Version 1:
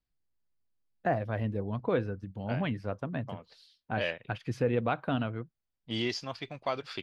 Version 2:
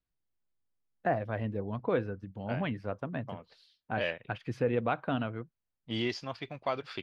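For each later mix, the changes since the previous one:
first voice: add low-shelf EQ 170 Hz −4.5 dB
master: add bass and treble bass 0 dB, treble −7 dB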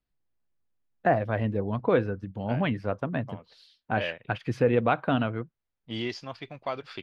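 first voice +6.5 dB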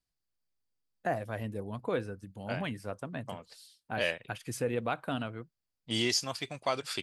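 first voice −10.0 dB
master: remove high-frequency loss of the air 290 metres

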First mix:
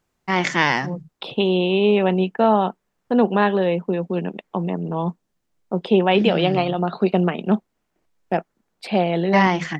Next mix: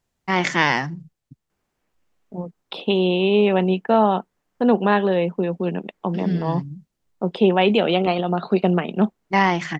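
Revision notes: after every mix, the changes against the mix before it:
second voice: entry +1.50 s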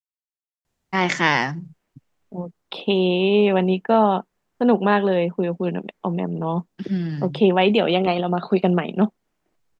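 first voice: entry +0.65 s

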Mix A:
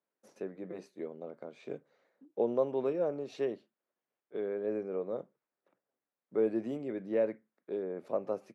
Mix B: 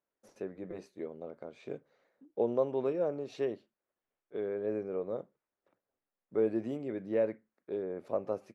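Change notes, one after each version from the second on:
master: remove high-pass filter 130 Hz 24 dB per octave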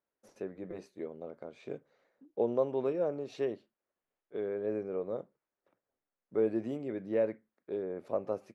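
nothing changed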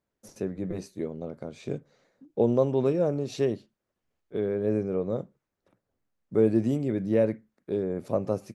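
first voice +4.5 dB
master: add bass and treble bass +14 dB, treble +13 dB

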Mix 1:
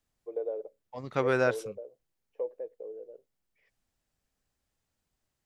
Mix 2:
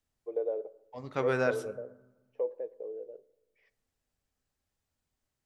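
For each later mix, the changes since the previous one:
second voice −6.0 dB
reverb: on, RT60 1.1 s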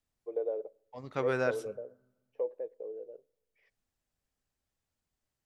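first voice: send −11.5 dB
second voice: send −8.5 dB

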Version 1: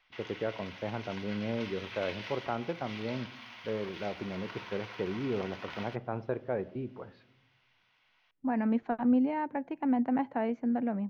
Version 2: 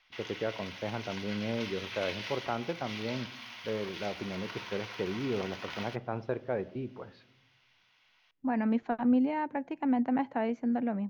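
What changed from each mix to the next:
master: add high-shelf EQ 4,400 Hz +12 dB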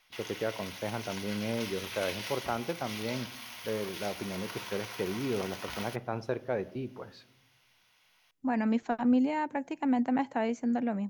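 background: add spectral tilt −3 dB per octave
master: remove high-frequency loss of the air 240 metres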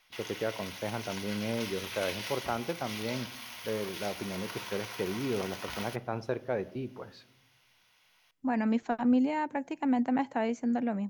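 background: send +6.0 dB

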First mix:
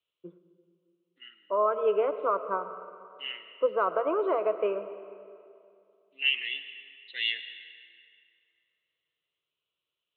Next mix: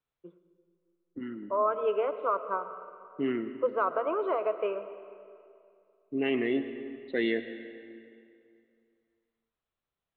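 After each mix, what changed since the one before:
second voice: remove high-pass with resonance 2,900 Hz, resonance Q 6
master: add low-shelf EQ 430 Hz −6 dB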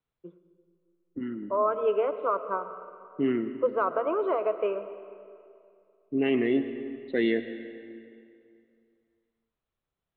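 master: add low-shelf EQ 430 Hz +6 dB

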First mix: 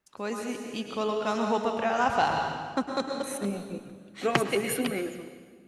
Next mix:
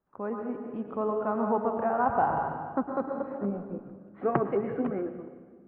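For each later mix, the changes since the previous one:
master: add low-pass filter 1,300 Hz 24 dB per octave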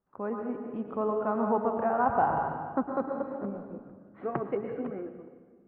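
second voice −6.0 dB

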